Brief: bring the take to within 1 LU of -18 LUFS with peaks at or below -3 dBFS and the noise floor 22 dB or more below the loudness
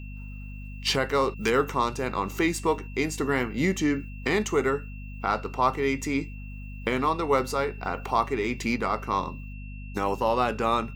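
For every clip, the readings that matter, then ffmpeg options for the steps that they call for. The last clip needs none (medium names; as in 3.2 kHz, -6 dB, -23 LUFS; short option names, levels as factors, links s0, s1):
hum 50 Hz; highest harmonic 250 Hz; hum level -36 dBFS; steady tone 2.7 kHz; tone level -48 dBFS; loudness -27.0 LUFS; peak level -10.0 dBFS; loudness target -18.0 LUFS
-> -af "bandreject=f=50:t=h:w=4,bandreject=f=100:t=h:w=4,bandreject=f=150:t=h:w=4,bandreject=f=200:t=h:w=4,bandreject=f=250:t=h:w=4"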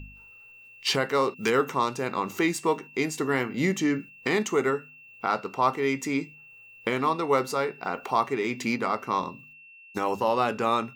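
hum not found; steady tone 2.7 kHz; tone level -48 dBFS
-> -af "bandreject=f=2700:w=30"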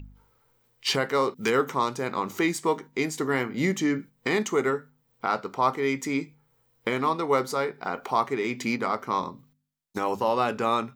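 steady tone not found; loudness -27.0 LUFS; peak level -9.5 dBFS; loudness target -18.0 LUFS
-> -af "volume=2.82,alimiter=limit=0.708:level=0:latency=1"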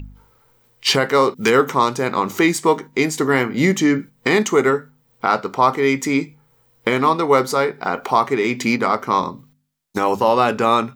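loudness -18.0 LUFS; peak level -3.0 dBFS; noise floor -60 dBFS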